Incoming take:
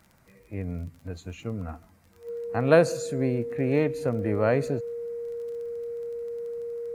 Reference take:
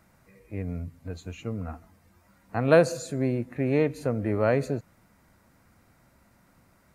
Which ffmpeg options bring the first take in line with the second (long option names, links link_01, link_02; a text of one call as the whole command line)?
ffmpeg -i in.wav -af "adeclick=threshold=4,bandreject=frequency=470:width=30" out.wav